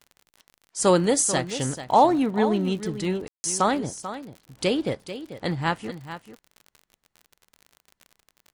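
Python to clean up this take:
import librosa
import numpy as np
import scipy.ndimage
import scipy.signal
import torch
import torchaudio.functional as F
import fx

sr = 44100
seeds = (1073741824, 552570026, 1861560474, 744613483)

y = fx.fix_declick_ar(x, sr, threshold=6.5)
y = fx.fix_ambience(y, sr, seeds[0], print_start_s=6.65, print_end_s=7.15, start_s=3.28, end_s=3.44)
y = fx.fix_echo_inverse(y, sr, delay_ms=440, level_db=-12.0)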